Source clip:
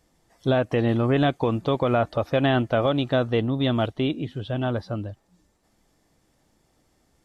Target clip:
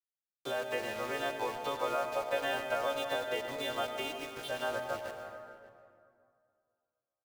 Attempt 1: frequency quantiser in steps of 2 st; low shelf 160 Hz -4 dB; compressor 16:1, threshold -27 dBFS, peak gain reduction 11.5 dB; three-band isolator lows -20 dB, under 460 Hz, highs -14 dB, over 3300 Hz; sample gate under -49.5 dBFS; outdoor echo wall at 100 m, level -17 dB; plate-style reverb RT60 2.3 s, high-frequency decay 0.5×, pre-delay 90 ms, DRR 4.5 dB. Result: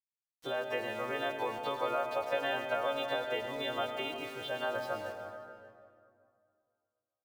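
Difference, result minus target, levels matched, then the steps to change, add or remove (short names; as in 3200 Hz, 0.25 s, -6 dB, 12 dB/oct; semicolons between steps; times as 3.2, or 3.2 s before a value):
sample gate: distortion -9 dB
change: sample gate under -41.5 dBFS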